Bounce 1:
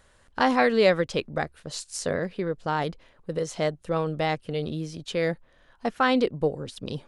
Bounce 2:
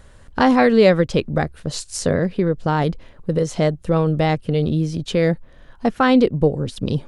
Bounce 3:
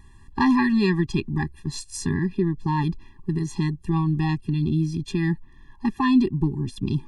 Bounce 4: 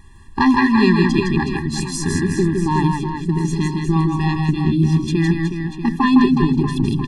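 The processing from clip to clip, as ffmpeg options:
-filter_complex "[0:a]lowshelf=f=350:g=11,asplit=2[a][b];[b]acompressor=threshold=-26dB:ratio=6,volume=-3dB[c];[a][c]amix=inputs=2:normalize=0,volume=1.5dB"
-af "afftfilt=real='re*eq(mod(floor(b*sr/1024/400),2),0)':imag='im*eq(mod(floor(b*sr/1024/400),2),0)':win_size=1024:overlap=0.75,volume=-2.5dB"
-af "bandreject=f=50:t=h:w=6,bandreject=f=100:t=h:w=6,bandreject=f=150:t=h:w=6,bandreject=f=200:t=h:w=6,bandreject=f=250:t=h:w=6,aecho=1:1:160|368|638.4|989.9|1447:0.631|0.398|0.251|0.158|0.1,volume=5.5dB"

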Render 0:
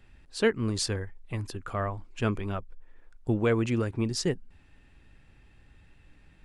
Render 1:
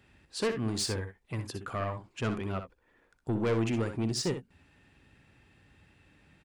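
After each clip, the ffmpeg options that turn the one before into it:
-filter_complex "[0:a]highpass=90,asoftclip=type=tanh:threshold=-24.5dB,asplit=2[a][b];[b]aecho=0:1:62|77:0.355|0.133[c];[a][c]amix=inputs=2:normalize=0"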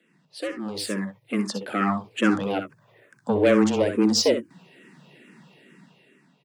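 -filter_complex "[0:a]dynaudnorm=f=410:g=5:m=13dB,afreqshift=100,asplit=2[a][b];[b]afreqshift=-2.3[c];[a][c]amix=inputs=2:normalize=1"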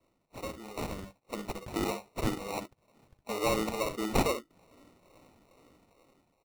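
-af "highpass=f=1.2k:p=1,acrusher=samples=27:mix=1:aa=0.000001,volume=-2.5dB"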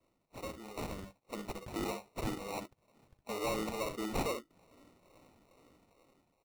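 -af "asoftclip=type=tanh:threshold=-26dB,volume=-3dB"

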